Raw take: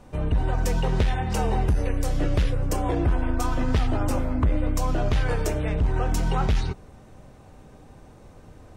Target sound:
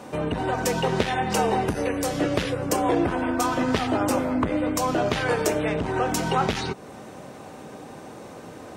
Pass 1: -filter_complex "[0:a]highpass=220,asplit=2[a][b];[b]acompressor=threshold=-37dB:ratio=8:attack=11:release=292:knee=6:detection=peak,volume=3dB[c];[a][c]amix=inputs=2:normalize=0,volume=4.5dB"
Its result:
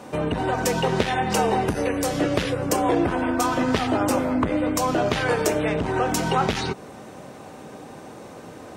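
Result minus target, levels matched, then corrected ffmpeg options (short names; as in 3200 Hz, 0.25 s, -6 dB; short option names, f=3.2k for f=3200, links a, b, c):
compressor: peak gain reduction -6.5 dB
-filter_complex "[0:a]highpass=220,asplit=2[a][b];[b]acompressor=threshold=-44.5dB:ratio=8:attack=11:release=292:knee=6:detection=peak,volume=3dB[c];[a][c]amix=inputs=2:normalize=0,volume=4.5dB"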